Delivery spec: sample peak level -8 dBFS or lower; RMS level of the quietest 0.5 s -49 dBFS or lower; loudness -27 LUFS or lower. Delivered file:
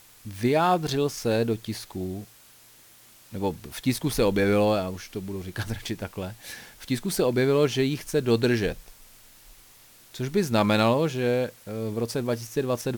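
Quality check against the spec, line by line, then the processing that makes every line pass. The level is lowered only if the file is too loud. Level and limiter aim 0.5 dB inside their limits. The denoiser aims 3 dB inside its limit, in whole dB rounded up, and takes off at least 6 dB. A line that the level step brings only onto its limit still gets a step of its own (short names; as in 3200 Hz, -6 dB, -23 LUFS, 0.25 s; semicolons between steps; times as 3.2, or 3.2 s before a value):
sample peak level -8.5 dBFS: OK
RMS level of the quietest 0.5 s -53 dBFS: OK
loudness -26.0 LUFS: fail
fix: gain -1.5 dB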